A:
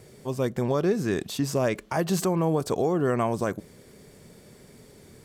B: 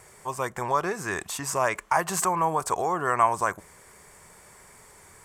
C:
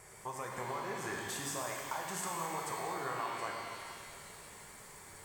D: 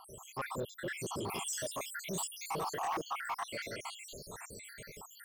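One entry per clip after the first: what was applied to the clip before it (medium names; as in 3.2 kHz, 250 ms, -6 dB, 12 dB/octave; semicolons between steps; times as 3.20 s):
graphic EQ 125/250/500/1000/2000/4000/8000 Hz -7/-12/-5/+12/+5/-7/+9 dB
compression 5:1, threshold -35 dBFS, peak gain reduction 18 dB; pitch-shifted reverb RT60 2.5 s, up +12 st, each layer -8 dB, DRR -1 dB; trim -5 dB
random holes in the spectrogram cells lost 77%; saturation -39 dBFS, distortion -14 dB; trim +9 dB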